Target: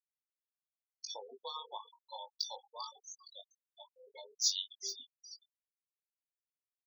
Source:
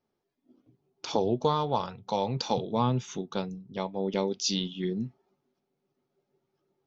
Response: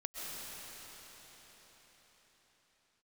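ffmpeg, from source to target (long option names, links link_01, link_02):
-filter_complex "[0:a]asplit=2[link_01][link_02];[link_02]asplit=6[link_03][link_04][link_05][link_06][link_07][link_08];[link_03]adelay=431,afreqshift=-90,volume=-11dB[link_09];[link_04]adelay=862,afreqshift=-180,volume=-15.9dB[link_10];[link_05]adelay=1293,afreqshift=-270,volume=-20.8dB[link_11];[link_06]adelay=1724,afreqshift=-360,volume=-25.6dB[link_12];[link_07]adelay=2155,afreqshift=-450,volume=-30.5dB[link_13];[link_08]adelay=2586,afreqshift=-540,volume=-35.4dB[link_14];[link_09][link_10][link_11][link_12][link_13][link_14]amix=inputs=6:normalize=0[link_15];[link_01][link_15]amix=inputs=2:normalize=0,afreqshift=27,bandreject=frequency=50:width_type=h:width=6,bandreject=frequency=100:width_type=h:width=6,bandreject=frequency=150:width_type=h:width=6,bandreject=frequency=200:width_type=h:width=6,acrusher=bits=5:mix=0:aa=0.5,aderivative,asplit=2[link_16][link_17];[link_17]aecho=0:1:396|792|1188|1584:0.282|0.113|0.0451|0.018[link_18];[link_16][link_18]amix=inputs=2:normalize=0,acrusher=bits=4:mode=log:mix=0:aa=0.000001,afftfilt=real='re*gte(hypot(re,im),0.0178)':imag='im*gte(hypot(re,im),0.0178)':win_size=1024:overlap=0.75,asplit=2[link_19][link_20];[link_20]adelay=20,volume=-6dB[link_21];[link_19][link_21]amix=inputs=2:normalize=0,volume=1.5dB"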